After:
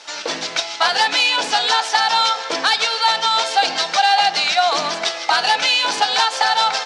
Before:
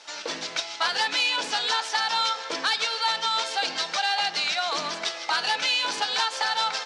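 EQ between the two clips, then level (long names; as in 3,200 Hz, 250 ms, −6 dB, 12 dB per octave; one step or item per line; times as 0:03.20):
dynamic equaliser 740 Hz, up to +8 dB, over −45 dBFS, Q 4.2
+7.5 dB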